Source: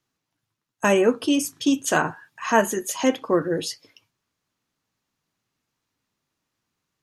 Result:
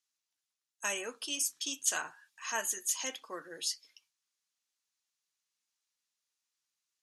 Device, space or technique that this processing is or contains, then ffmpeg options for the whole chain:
piezo pickup straight into a mixer: -af "lowpass=8700,aderivative"

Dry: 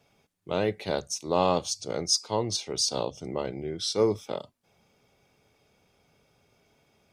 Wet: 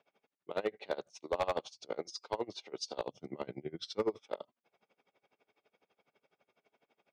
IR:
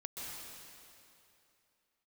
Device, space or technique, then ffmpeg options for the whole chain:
helicopter radio: -filter_complex "[0:a]asplit=3[link_01][link_02][link_03];[link_01]afade=type=out:start_time=3.07:duration=0.02[link_04];[link_02]asubboost=boost=5.5:cutoff=200,afade=type=in:start_time=3.07:duration=0.02,afade=type=out:start_time=4.05:duration=0.02[link_05];[link_03]afade=type=in:start_time=4.05:duration=0.02[link_06];[link_04][link_05][link_06]amix=inputs=3:normalize=0,highpass=330,lowpass=3000,aeval=exprs='val(0)*pow(10,-25*(0.5-0.5*cos(2*PI*12*n/s))/20)':channel_layout=same,asoftclip=type=hard:threshold=-24dB"

